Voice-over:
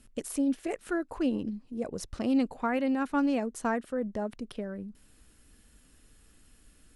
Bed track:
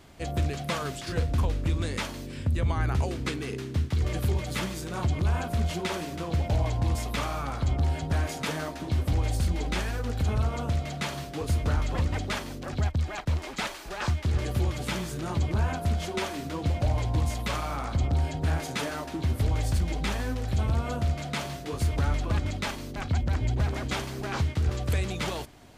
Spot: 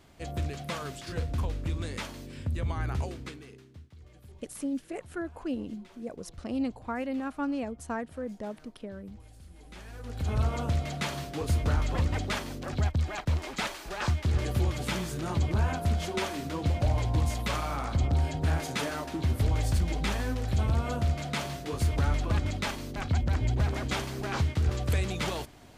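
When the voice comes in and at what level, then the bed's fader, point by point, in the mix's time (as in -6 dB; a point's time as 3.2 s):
4.25 s, -4.5 dB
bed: 3.03 s -5 dB
3.93 s -25.5 dB
9.48 s -25.5 dB
10.4 s -0.5 dB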